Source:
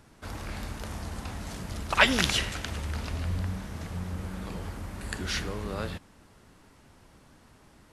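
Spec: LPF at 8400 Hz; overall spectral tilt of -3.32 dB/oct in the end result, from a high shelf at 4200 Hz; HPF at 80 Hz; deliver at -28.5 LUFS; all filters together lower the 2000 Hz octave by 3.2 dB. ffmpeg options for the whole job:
-af "highpass=80,lowpass=8.4k,equalizer=f=2k:t=o:g=-5.5,highshelf=f=4.2k:g=5.5,volume=3.5dB"

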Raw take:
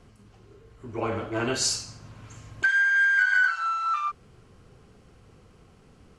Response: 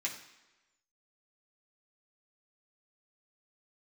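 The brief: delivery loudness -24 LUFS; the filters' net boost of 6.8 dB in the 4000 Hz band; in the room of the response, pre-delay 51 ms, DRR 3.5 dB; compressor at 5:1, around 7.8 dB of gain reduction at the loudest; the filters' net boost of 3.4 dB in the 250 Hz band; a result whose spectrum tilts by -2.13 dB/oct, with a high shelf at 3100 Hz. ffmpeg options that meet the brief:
-filter_complex "[0:a]equalizer=f=250:t=o:g=4.5,highshelf=f=3.1k:g=6,equalizer=f=4k:t=o:g=3.5,acompressor=threshold=-25dB:ratio=5,asplit=2[a][b];[1:a]atrim=start_sample=2205,adelay=51[c];[b][c]afir=irnorm=-1:irlink=0,volume=-6.5dB[d];[a][d]amix=inputs=2:normalize=0,volume=2.5dB"

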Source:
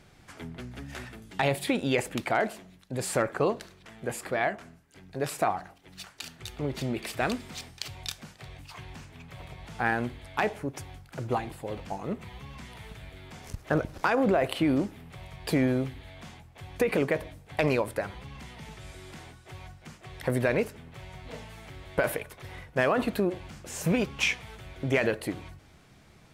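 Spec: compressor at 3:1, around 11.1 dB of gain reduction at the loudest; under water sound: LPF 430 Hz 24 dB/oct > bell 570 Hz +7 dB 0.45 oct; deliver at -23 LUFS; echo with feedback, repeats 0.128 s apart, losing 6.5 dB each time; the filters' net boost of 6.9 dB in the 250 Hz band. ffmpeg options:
-af "equalizer=f=250:t=o:g=8,acompressor=threshold=-31dB:ratio=3,lowpass=f=430:w=0.5412,lowpass=f=430:w=1.3066,equalizer=f=570:t=o:w=0.45:g=7,aecho=1:1:128|256|384|512|640|768:0.473|0.222|0.105|0.0491|0.0231|0.0109,volume=14dB"

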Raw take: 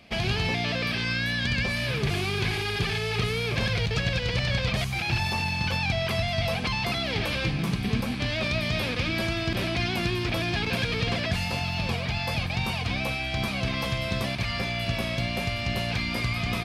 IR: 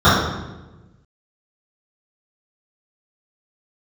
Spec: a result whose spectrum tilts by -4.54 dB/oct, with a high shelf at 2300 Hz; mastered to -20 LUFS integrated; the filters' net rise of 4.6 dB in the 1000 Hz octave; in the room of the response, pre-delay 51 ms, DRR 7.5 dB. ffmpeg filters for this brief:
-filter_complex "[0:a]equalizer=f=1k:t=o:g=7,highshelf=f=2.3k:g=-4.5,asplit=2[a][b];[1:a]atrim=start_sample=2205,adelay=51[c];[b][c]afir=irnorm=-1:irlink=0,volume=-36.5dB[d];[a][d]amix=inputs=2:normalize=0,volume=5.5dB"

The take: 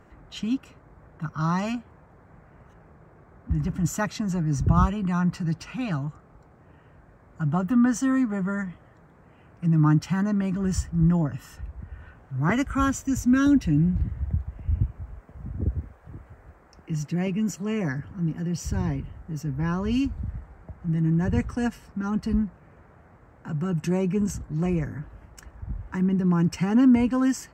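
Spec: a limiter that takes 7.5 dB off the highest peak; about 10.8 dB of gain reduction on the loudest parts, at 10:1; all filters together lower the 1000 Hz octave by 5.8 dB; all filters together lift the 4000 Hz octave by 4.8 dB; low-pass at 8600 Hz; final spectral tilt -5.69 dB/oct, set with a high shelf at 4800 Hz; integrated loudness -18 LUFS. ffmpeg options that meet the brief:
-af "lowpass=8.6k,equalizer=f=1k:t=o:g=-8.5,equalizer=f=4k:t=o:g=4,highshelf=f=4.8k:g=7,acompressor=threshold=-25dB:ratio=10,volume=15.5dB,alimiter=limit=-9.5dB:level=0:latency=1"

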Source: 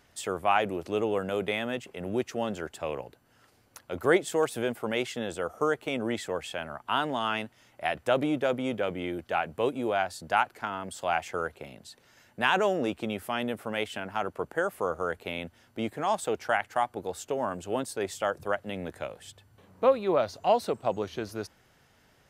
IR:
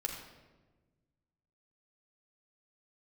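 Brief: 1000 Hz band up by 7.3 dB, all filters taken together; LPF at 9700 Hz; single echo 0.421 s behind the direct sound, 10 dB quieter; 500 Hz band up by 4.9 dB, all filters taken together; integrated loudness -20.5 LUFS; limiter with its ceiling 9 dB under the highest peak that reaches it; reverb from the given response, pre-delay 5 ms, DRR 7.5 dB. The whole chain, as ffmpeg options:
-filter_complex "[0:a]lowpass=9.7k,equalizer=f=500:t=o:g=3.5,equalizer=f=1k:t=o:g=8.5,alimiter=limit=-13dB:level=0:latency=1,aecho=1:1:421:0.316,asplit=2[a][b];[1:a]atrim=start_sample=2205,adelay=5[c];[b][c]afir=irnorm=-1:irlink=0,volume=-9.5dB[d];[a][d]amix=inputs=2:normalize=0,volume=6dB"

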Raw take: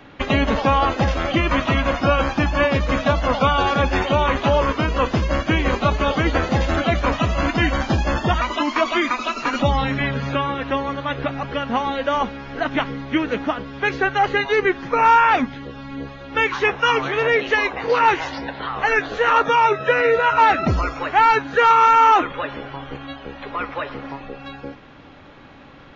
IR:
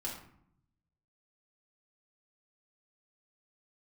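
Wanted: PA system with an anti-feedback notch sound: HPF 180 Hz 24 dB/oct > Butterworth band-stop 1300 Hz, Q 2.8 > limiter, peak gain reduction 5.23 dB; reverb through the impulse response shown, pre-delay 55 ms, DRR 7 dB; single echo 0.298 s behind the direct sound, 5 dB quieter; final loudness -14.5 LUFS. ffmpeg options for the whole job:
-filter_complex "[0:a]aecho=1:1:298:0.562,asplit=2[a][b];[1:a]atrim=start_sample=2205,adelay=55[c];[b][c]afir=irnorm=-1:irlink=0,volume=-8dB[d];[a][d]amix=inputs=2:normalize=0,highpass=f=180:w=0.5412,highpass=f=180:w=1.3066,asuperstop=centerf=1300:order=8:qfactor=2.8,volume=5dB,alimiter=limit=-4dB:level=0:latency=1"

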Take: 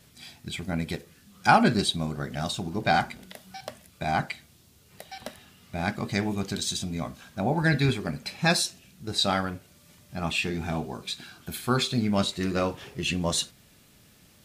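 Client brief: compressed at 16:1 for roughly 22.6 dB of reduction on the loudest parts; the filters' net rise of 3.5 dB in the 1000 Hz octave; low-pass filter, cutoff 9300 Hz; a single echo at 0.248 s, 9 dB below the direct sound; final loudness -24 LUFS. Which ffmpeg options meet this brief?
-af "lowpass=9.3k,equalizer=f=1k:t=o:g=5,acompressor=threshold=-33dB:ratio=16,aecho=1:1:248:0.355,volume=14.5dB"

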